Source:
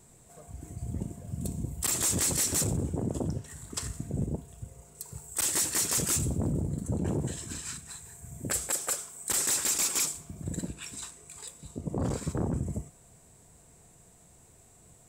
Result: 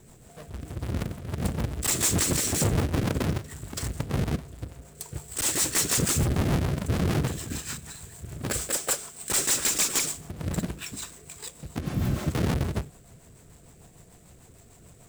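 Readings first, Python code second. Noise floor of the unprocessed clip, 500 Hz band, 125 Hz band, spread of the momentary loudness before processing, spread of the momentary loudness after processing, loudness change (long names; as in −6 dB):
−58 dBFS, +5.0 dB, +5.5 dB, 18 LU, 17 LU, +3.0 dB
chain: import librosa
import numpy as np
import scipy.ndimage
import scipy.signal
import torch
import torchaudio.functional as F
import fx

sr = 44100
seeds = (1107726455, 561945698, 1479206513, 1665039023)

y = fx.halfwave_hold(x, sr)
y = fx.spec_repair(y, sr, seeds[0], start_s=11.85, length_s=0.4, low_hz=250.0, high_hz=11000.0, source='both')
y = fx.rotary(y, sr, hz=6.7)
y = y * 10.0 ** (2.5 / 20.0)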